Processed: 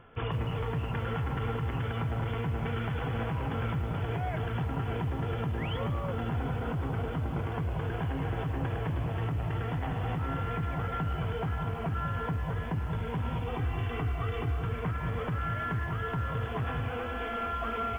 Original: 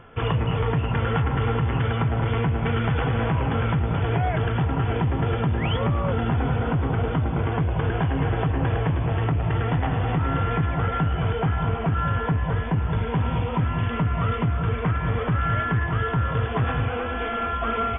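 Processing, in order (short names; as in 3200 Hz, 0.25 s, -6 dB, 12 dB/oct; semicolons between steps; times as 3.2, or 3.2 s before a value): 13.47–14.64 comb 2.6 ms, depth 77%; limiter -16.5 dBFS, peak gain reduction 5 dB; lo-fi delay 0.15 s, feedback 35%, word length 7-bit, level -14 dB; gain -7.5 dB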